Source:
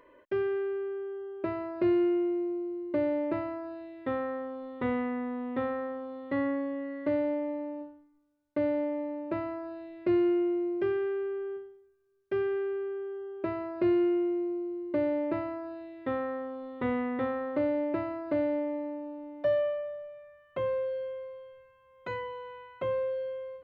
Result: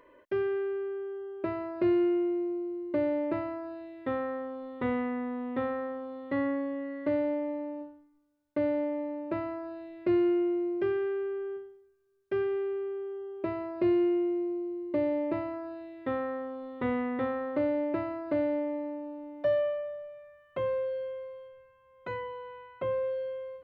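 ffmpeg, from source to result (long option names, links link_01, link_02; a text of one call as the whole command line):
ffmpeg -i in.wav -filter_complex "[0:a]asettb=1/sr,asplit=3[link_01][link_02][link_03];[link_01]atrim=end=12.444[link_04];[link_02]atrim=start=12.44:end=15.54,asetpts=PTS-STARTPTS,afade=type=in:duration=0.004:curve=qsin,afade=type=out:start_time=3.096:duration=0.004:curve=qsin,equalizer=frequency=1500:width_type=o:width=0.2:gain=-9.5[link_05];[link_03]atrim=start=15.536[link_06];[link_04][link_05]acrossfade=duration=0.004:curve1=hsin:curve2=qsin[link_07];[link_07][link_06]acrossfade=duration=0.004:curve1=qsin:curve2=hsin,asplit=3[link_08][link_09][link_10];[link_08]afade=type=out:start_time=21.47:duration=0.02[link_11];[link_09]highshelf=frequency=3600:gain=-7.5,afade=type=in:start_time=21.47:duration=0.02,afade=type=out:start_time=23.03:duration=0.02[link_12];[link_10]afade=type=in:start_time=23.03:duration=0.02[link_13];[link_11][link_12][link_13]amix=inputs=3:normalize=0" out.wav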